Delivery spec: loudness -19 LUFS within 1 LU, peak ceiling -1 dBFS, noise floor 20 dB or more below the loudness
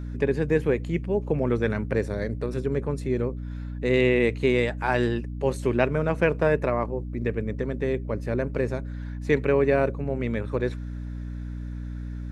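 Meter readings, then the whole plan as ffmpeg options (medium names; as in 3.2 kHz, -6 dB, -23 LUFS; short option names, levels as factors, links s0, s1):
hum 60 Hz; highest harmonic 300 Hz; hum level -31 dBFS; loudness -26.0 LUFS; peak level -6.0 dBFS; loudness target -19.0 LUFS
-> -af "bandreject=f=60:t=h:w=6,bandreject=f=120:t=h:w=6,bandreject=f=180:t=h:w=6,bandreject=f=240:t=h:w=6,bandreject=f=300:t=h:w=6"
-af "volume=2.24,alimiter=limit=0.891:level=0:latency=1"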